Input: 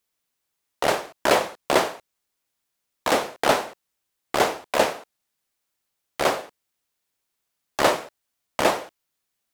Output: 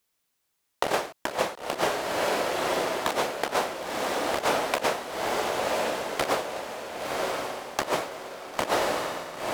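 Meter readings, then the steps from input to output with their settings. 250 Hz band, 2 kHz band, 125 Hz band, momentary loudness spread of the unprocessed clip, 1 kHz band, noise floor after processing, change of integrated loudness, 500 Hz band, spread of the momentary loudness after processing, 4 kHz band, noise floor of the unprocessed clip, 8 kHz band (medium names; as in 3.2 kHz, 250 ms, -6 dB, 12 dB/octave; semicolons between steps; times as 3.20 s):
-2.5 dB, -2.0 dB, -2.0 dB, 10 LU, -2.0 dB, -76 dBFS, -4.5 dB, -2.0 dB, 7 LU, -1.5 dB, -80 dBFS, -1.5 dB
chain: echo that smears into a reverb 1017 ms, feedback 43%, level -7 dB; compressor with a negative ratio -24 dBFS, ratio -0.5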